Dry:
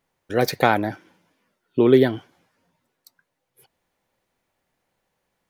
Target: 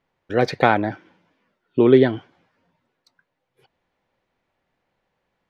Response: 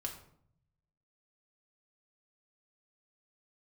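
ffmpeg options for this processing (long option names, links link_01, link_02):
-af "lowpass=3700,volume=1.5dB"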